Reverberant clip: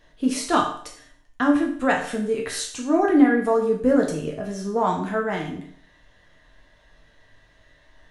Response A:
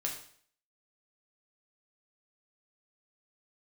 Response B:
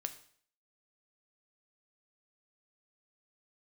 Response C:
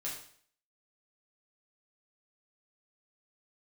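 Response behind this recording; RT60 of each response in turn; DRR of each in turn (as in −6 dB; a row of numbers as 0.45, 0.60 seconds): A; 0.55, 0.55, 0.55 seconds; −1.0, 7.5, −5.5 decibels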